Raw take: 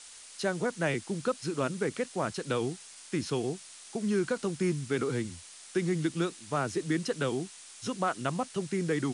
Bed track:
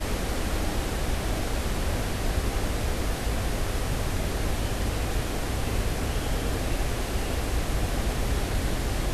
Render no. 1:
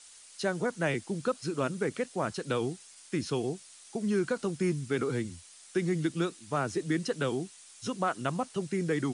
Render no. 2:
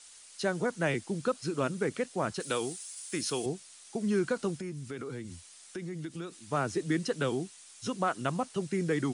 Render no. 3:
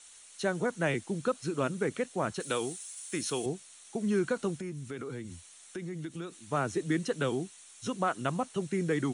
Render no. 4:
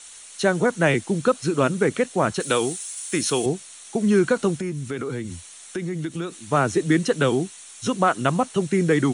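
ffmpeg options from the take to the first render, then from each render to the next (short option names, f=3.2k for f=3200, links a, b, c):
-af "afftdn=nr=6:nf=-50"
-filter_complex "[0:a]asettb=1/sr,asplit=3[a][b][c];[a]atrim=end=2.404[d];[b]atrim=start=2.4:end=3.46,asetpts=PTS-STARTPTS,afade=t=in:d=0.004:c=qsin,afade=t=out:st=1.056:d=0.004:c=qsin,aemphasis=mode=production:type=bsi[e];[c]atrim=start=3.456[f];[d][e]acrossfade=d=0.004:c1=hsin:c2=qsin[g];[g][f]acrossfade=d=0.004:c1=qsin:c2=hsin,asettb=1/sr,asplit=3[h][i][j];[h]atrim=end=4.564[k];[i]atrim=start=4.56:end=6.35,asetpts=PTS-STARTPTS,afade=t=in:d=0.004:c=qsin,afade=t=out:st=1.786:d=0.004:c=qsin,acompressor=threshold=-38dB:ratio=3:attack=3.2:release=140:knee=1:detection=peak[l];[j]atrim=start=6.346[m];[k][l]acrossfade=d=0.004:c1=hsin:c2=qsin[n];[n][m]acrossfade=d=0.004:c1=qsin:c2=hsin"
-af "bandreject=f=4.9k:w=5"
-af "volume=10.5dB"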